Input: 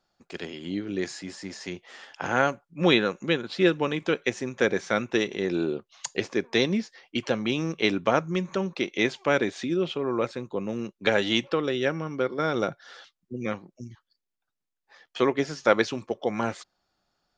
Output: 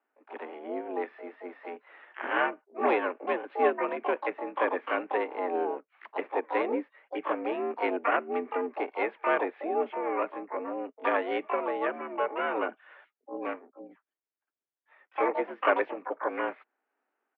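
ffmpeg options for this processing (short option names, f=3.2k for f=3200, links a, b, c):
-filter_complex "[0:a]asplit=4[a][b][c][d];[b]asetrate=29433,aresample=44100,atempo=1.49831,volume=-14dB[e];[c]asetrate=66075,aresample=44100,atempo=0.66742,volume=-11dB[f];[d]asetrate=88200,aresample=44100,atempo=0.5,volume=-2dB[g];[a][e][f][g]amix=inputs=4:normalize=0,highpass=f=200:t=q:w=0.5412,highpass=f=200:t=q:w=1.307,lowpass=f=2.3k:t=q:w=0.5176,lowpass=f=2.3k:t=q:w=0.7071,lowpass=f=2.3k:t=q:w=1.932,afreqshift=68,volume=-5.5dB"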